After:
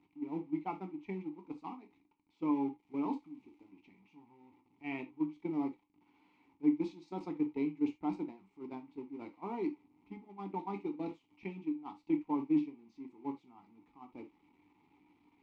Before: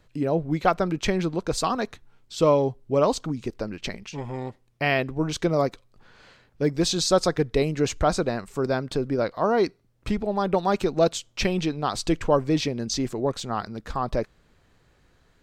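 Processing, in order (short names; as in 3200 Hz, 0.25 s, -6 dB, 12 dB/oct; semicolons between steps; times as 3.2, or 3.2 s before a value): zero-crossing step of -27.5 dBFS; gate -20 dBFS, range -19 dB; high shelf 4400 Hz -8.5 dB; in parallel at +0.5 dB: limiter -16 dBFS, peak gain reduction 9 dB; 2.78–3.7 on the sum: crackle 420/s -38 dBFS; vowel filter u; non-linear reverb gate 0.1 s falling, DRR 5.5 dB; gain -8 dB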